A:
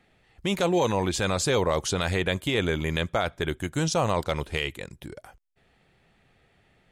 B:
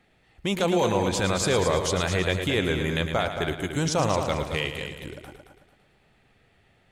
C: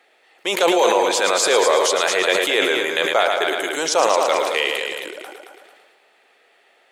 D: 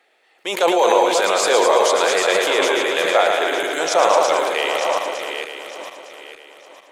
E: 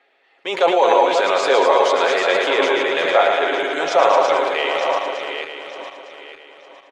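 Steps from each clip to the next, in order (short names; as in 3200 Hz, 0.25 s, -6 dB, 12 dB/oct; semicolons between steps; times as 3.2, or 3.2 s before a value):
multi-head echo 0.111 s, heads first and second, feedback 41%, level -9.5 dB
HPF 410 Hz 24 dB/oct; sustainer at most 30 dB/s; gain +8 dB
regenerating reverse delay 0.454 s, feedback 53%, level -5 dB; dynamic EQ 780 Hz, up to +5 dB, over -26 dBFS, Q 0.87; gain -3 dB
LPF 3700 Hz 12 dB/oct; notches 50/100/150 Hz; comb 7.3 ms, depth 44%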